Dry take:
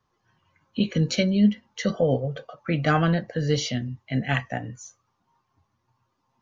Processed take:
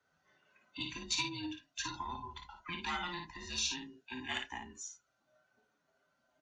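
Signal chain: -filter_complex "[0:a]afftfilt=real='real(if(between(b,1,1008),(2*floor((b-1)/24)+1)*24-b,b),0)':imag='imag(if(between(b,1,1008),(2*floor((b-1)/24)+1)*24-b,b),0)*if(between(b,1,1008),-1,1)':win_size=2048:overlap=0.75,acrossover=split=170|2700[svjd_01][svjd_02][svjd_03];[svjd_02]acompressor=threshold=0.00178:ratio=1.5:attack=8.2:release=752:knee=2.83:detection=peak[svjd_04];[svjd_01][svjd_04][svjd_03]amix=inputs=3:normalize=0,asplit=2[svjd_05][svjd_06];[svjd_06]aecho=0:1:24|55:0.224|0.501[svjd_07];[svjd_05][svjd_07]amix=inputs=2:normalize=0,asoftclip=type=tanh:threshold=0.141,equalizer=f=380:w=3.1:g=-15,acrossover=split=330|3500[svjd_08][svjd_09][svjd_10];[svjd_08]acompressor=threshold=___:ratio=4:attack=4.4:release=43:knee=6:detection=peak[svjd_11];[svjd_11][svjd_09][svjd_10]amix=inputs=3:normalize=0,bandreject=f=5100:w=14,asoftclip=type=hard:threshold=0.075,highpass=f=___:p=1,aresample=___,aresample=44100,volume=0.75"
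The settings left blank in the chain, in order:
0.00447, 92, 22050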